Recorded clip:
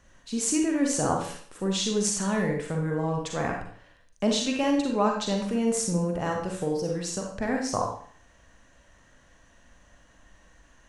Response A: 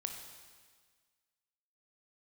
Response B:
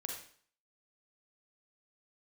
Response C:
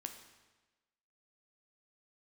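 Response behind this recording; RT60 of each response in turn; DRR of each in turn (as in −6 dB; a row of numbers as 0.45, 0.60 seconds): B; 1.6, 0.50, 1.2 seconds; 3.5, 0.5, 5.5 decibels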